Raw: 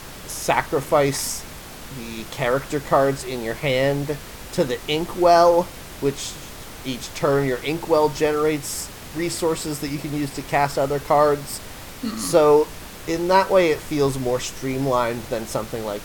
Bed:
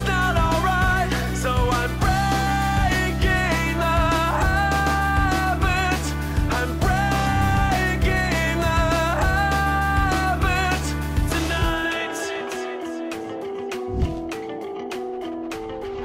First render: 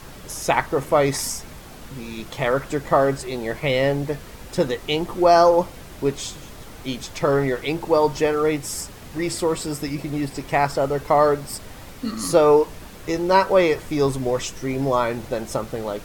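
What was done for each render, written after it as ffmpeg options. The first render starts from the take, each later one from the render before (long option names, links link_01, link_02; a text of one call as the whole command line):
ffmpeg -i in.wav -af "afftdn=noise_reduction=6:noise_floor=-38" out.wav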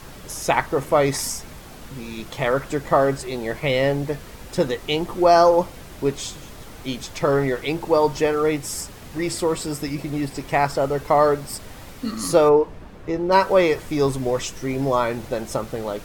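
ffmpeg -i in.wav -filter_complex "[0:a]asplit=3[link_01][link_02][link_03];[link_01]afade=type=out:start_time=12.48:duration=0.02[link_04];[link_02]lowpass=frequency=1200:poles=1,afade=type=in:start_time=12.48:duration=0.02,afade=type=out:start_time=13.31:duration=0.02[link_05];[link_03]afade=type=in:start_time=13.31:duration=0.02[link_06];[link_04][link_05][link_06]amix=inputs=3:normalize=0" out.wav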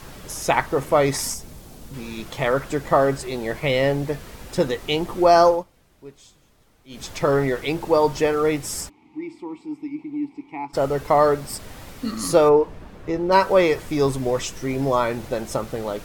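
ffmpeg -i in.wav -filter_complex "[0:a]asettb=1/sr,asplit=3[link_01][link_02][link_03];[link_01]atrim=end=1.344[link_04];[link_02]atrim=start=1.34:end=1.94,asetpts=PTS-STARTPTS,afade=type=in:duration=0.004:curve=qsin,afade=type=out:start_time=0.596:duration=0.004:curve=qsin,equalizer=frequency=1700:width_type=o:width=2.5:gain=-9.5[link_05];[link_03]atrim=start=1.936[link_06];[link_04][link_05]acrossfade=duration=0.004:curve1=hsin:curve2=qsin[link_07];[link_07][link_06]acrossfade=duration=0.004:curve1=qsin:curve2=hsin,asplit=3[link_08][link_09][link_10];[link_08]afade=type=out:start_time=8.88:duration=0.02[link_11];[link_09]asplit=3[link_12][link_13][link_14];[link_12]bandpass=frequency=300:width_type=q:width=8,volume=0dB[link_15];[link_13]bandpass=frequency=870:width_type=q:width=8,volume=-6dB[link_16];[link_14]bandpass=frequency=2240:width_type=q:width=8,volume=-9dB[link_17];[link_15][link_16][link_17]amix=inputs=3:normalize=0,afade=type=in:start_time=8.88:duration=0.02,afade=type=out:start_time=10.73:duration=0.02[link_18];[link_10]afade=type=in:start_time=10.73:duration=0.02[link_19];[link_11][link_18][link_19]amix=inputs=3:normalize=0,asplit=3[link_20][link_21][link_22];[link_20]atrim=end=5.64,asetpts=PTS-STARTPTS,afade=type=out:start_time=5.47:duration=0.17:silence=0.105925[link_23];[link_21]atrim=start=5.64:end=6.89,asetpts=PTS-STARTPTS,volume=-19.5dB[link_24];[link_22]atrim=start=6.89,asetpts=PTS-STARTPTS,afade=type=in:duration=0.17:silence=0.105925[link_25];[link_23][link_24][link_25]concat=n=3:v=0:a=1" out.wav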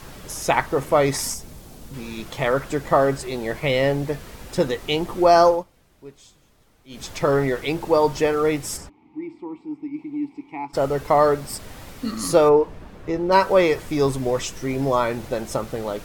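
ffmpeg -i in.wav -filter_complex "[0:a]asplit=3[link_01][link_02][link_03];[link_01]afade=type=out:start_time=8.76:duration=0.02[link_04];[link_02]lowpass=frequency=1600:poles=1,afade=type=in:start_time=8.76:duration=0.02,afade=type=out:start_time=9.93:duration=0.02[link_05];[link_03]afade=type=in:start_time=9.93:duration=0.02[link_06];[link_04][link_05][link_06]amix=inputs=3:normalize=0" out.wav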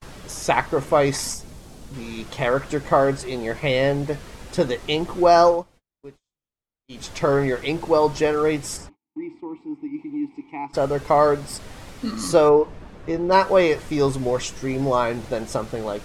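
ffmpeg -i in.wav -af "agate=range=-36dB:threshold=-44dB:ratio=16:detection=peak,lowpass=9700" out.wav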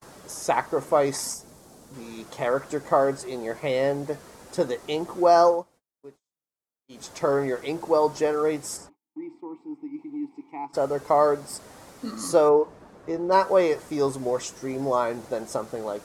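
ffmpeg -i in.wav -af "highpass=frequency=420:poles=1,equalizer=frequency=2800:width_type=o:width=1.7:gain=-10.5" out.wav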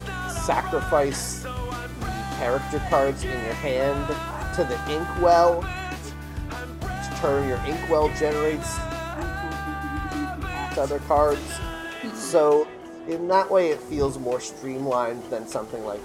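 ffmpeg -i in.wav -i bed.wav -filter_complex "[1:a]volume=-10.5dB[link_01];[0:a][link_01]amix=inputs=2:normalize=0" out.wav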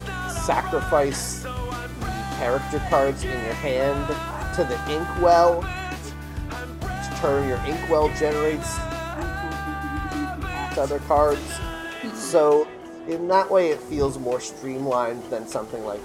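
ffmpeg -i in.wav -af "volume=1dB" out.wav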